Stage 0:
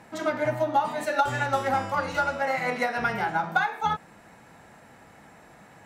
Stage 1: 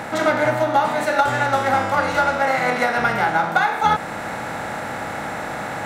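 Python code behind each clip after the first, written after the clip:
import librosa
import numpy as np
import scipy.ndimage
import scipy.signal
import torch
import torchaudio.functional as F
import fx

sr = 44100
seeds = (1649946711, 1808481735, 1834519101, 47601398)

y = fx.bin_compress(x, sr, power=0.6)
y = fx.rider(y, sr, range_db=5, speed_s=0.5)
y = y * librosa.db_to_amplitude(4.0)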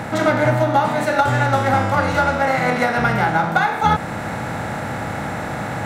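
y = fx.peak_eq(x, sr, hz=100.0, db=11.0, octaves=2.4)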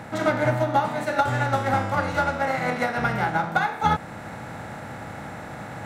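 y = fx.upward_expand(x, sr, threshold_db=-26.0, expansion=1.5)
y = y * librosa.db_to_amplitude(-4.0)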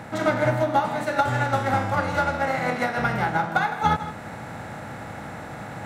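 y = x + 10.0 ** (-13.0 / 20.0) * np.pad(x, (int(158 * sr / 1000.0), 0))[:len(x)]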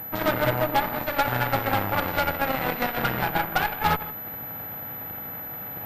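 y = fx.cheby_harmonics(x, sr, harmonics=(5, 7, 8), levels_db=(-11, -13, -13), full_scale_db=-7.0)
y = fx.pwm(y, sr, carrier_hz=12000.0)
y = y * librosa.db_to_amplitude(-5.0)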